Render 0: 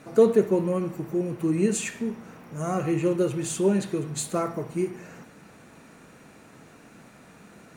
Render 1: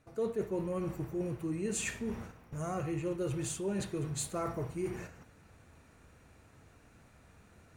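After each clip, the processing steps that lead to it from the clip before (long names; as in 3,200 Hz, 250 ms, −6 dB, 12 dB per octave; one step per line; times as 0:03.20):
noise gate −42 dBFS, range −11 dB
low shelf with overshoot 120 Hz +14 dB, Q 1.5
reversed playback
downward compressor 4 to 1, threshold −34 dBFS, peak gain reduction 17 dB
reversed playback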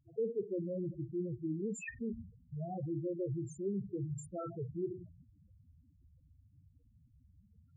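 spectral peaks only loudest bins 4
level −1 dB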